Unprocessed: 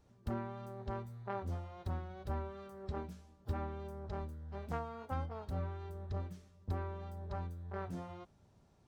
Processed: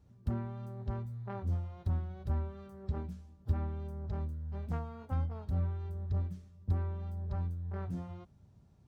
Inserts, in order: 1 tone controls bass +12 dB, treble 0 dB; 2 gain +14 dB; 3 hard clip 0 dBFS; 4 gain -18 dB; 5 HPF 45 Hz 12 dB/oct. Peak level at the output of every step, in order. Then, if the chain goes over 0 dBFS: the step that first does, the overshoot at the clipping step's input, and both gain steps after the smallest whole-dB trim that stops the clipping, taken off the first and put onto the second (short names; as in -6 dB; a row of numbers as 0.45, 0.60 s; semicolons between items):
-15.5, -1.5, -1.5, -19.5, -19.5 dBFS; no overload